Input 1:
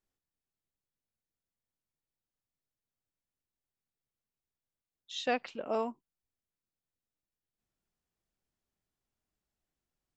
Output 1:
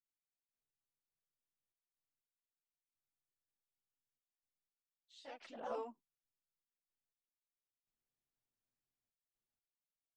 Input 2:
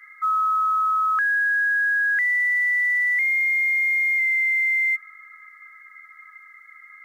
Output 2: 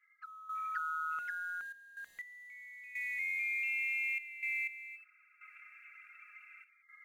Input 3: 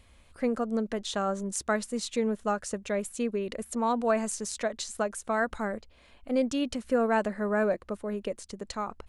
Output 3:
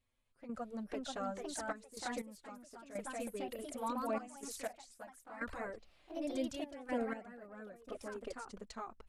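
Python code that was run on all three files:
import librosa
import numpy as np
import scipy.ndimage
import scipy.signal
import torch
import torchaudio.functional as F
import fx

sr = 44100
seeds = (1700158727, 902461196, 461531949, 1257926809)

y = fx.env_flanger(x, sr, rest_ms=8.4, full_db=-19.5)
y = fx.echo_pitch(y, sr, ms=551, semitones=2, count=2, db_per_echo=-3.0)
y = fx.step_gate(y, sr, bpm=61, pattern='..xxxxx.x.', floor_db=-12.0, edge_ms=4.5)
y = y * 10.0 ** (-9.0 / 20.0)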